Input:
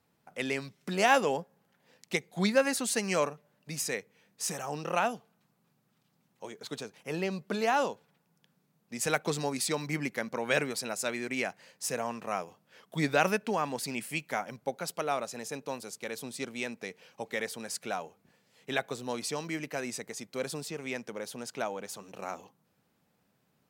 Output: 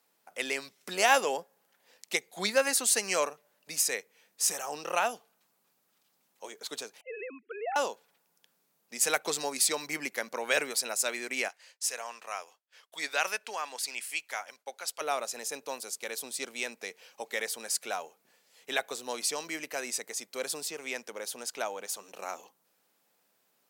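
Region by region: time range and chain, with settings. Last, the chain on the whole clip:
0:07.01–0:07.76: three sine waves on the formant tracks + downward compressor 2 to 1, threshold −35 dBFS + high-frequency loss of the air 260 metres
0:11.48–0:15.01: downward expander −57 dBFS + high-pass filter 1,300 Hz 6 dB per octave + high-shelf EQ 12,000 Hz −12 dB
whole clip: high-pass filter 400 Hz 12 dB per octave; high-shelf EQ 4,400 Hz +9 dB

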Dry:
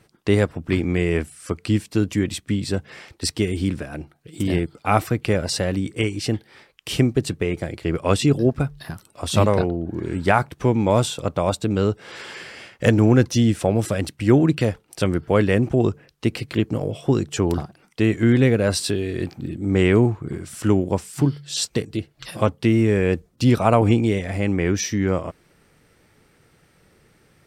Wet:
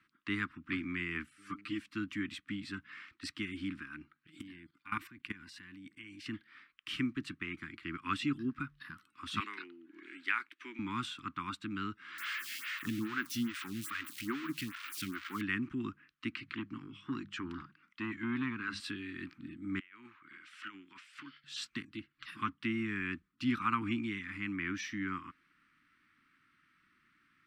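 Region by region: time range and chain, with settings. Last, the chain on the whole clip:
0:01.37–0:01.77: hum with harmonics 100 Hz, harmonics 6, −39 dBFS 0 dB per octave + comb filter 6.7 ms, depth 94% + string-ensemble chorus
0:04.41–0:06.26: high-shelf EQ 12,000 Hz +10.5 dB + notch filter 1,300 Hz, Q 6.1 + output level in coarse steps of 17 dB
0:09.40–0:10.79: four-pole ladder high-pass 320 Hz, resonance 40% + high shelf with overshoot 1,600 Hz +8 dB, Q 1.5
0:12.18–0:15.41: spike at every zero crossing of −11.5 dBFS + log-companded quantiser 6 bits + phaser with staggered stages 2.4 Hz
0:16.31–0:18.80: low-pass filter 6,700 Hz + mains-hum notches 50/100/150/200 Hz + saturating transformer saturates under 410 Hz
0:19.79–0:21.44: resonant band-pass 2,700 Hz, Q 0.99 + compressor whose output falls as the input rises −36 dBFS, ratio −0.5
whole clip: Chebyshev band-stop filter 280–1,200 Hz, order 3; three-way crossover with the lows and the highs turned down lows −21 dB, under 300 Hz, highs −21 dB, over 3,100 Hz; level −5 dB

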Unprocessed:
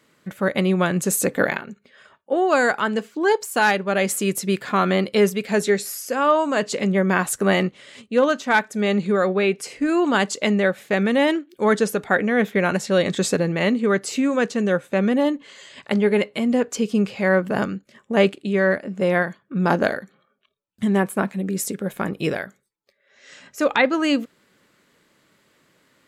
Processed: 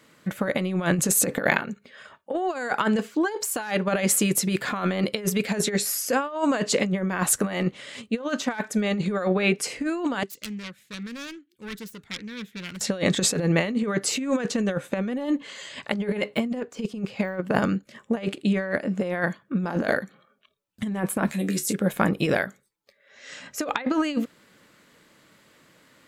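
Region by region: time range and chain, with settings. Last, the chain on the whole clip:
0:10.23–0:12.81: phase distortion by the signal itself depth 0.32 ms + guitar amp tone stack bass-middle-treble 6-0-2
0:16.34–0:17.56: high-shelf EQ 9,200 Hz −4 dB + de-essing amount 85% + transient designer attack +2 dB, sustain −9 dB
0:21.26–0:21.73: high-shelf EQ 2,800 Hz +11.5 dB + compressor whose output falls as the input rises −22 dBFS, ratio −0.5 + tuned comb filter 74 Hz, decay 0.18 s, mix 80%
whole clip: notch filter 390 Hz, Q 12; compressor whose output falls as the input rises −23 dBFS, ratio −0.5

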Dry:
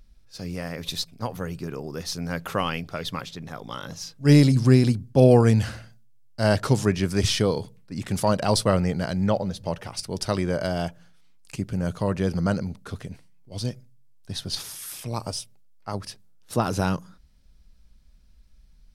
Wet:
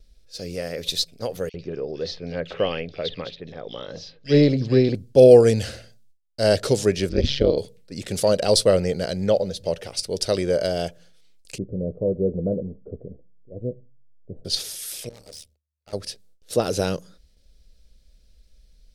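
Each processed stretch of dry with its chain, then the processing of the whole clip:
0:01.49–0:04.95: low-pass filter 4,100 Hz 24 dB per octave + notch filter 1,400 Hz, Q 13 + multiband delay without the direct sound highs, lows 50 ms, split 2,500 Hz
0:07.09–0:07.58: low-pass filter 4,500 Hz 24 dB per octave + low-shelf EQ 290 Hz +8.5 dB + amplitude modulation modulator 140 Hz, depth 100%
0:11.58–0:14.45: inverse Chebyshev low-pass filter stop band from 3,200 Hz, stop band 80 dB + double-tracking delay 16 ms −11 dB
0:15.09–0:15.93: mains-hum notches 50/100/150/200/250 Hz + amplitude modulation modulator 75 Hz, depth 95% + tube saturation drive 42 dB, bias 0.45
whole clip: noise gate with hold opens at −50 dBFS; octave-band graphic EQ 125/250/500/1,000/4,000/8,000 Hz −6/−4/+11/−12/+5/+3 dB; level +1 dB

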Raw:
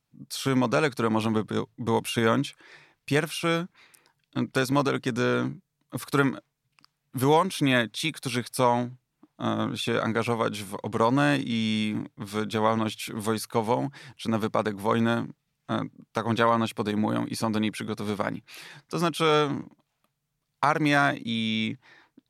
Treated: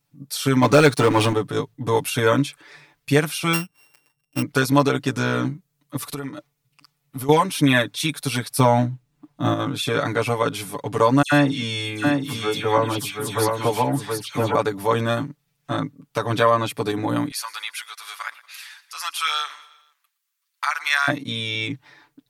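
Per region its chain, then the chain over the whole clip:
0:00.62–0:01.33: Butterworth low-pass 11,000 Hz + leveller curve on the samples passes 2
0:03.53–0:04.42: samples sorted by size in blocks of 16 samples + expander for the loud parts, over −41 dBFS
0:05.96–0:07.29: notch filter 1,600 Hz, Q 14 + downward compressor 10 to 1, threshold −32 dBFS
0:08.59–0:09.54: running median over 3 samples + low-shelf EQ 380 Hz +7 dB
0:11.22–0:14.55: all-pass dispersion lows, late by 101 ms, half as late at 2,500 Hz + single-tap delay 723 ms −5 dB
0:17.31–0:21.08: high-pass filter 1,200 Hz 24 dB per octave + repeating echo 117 ms, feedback 54%, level −19.5 dB
whole clip: high-shelf EQ 11,000 Hz +8 dB; comb filter 6.9 ms, depth 98%; level +1.5 dB

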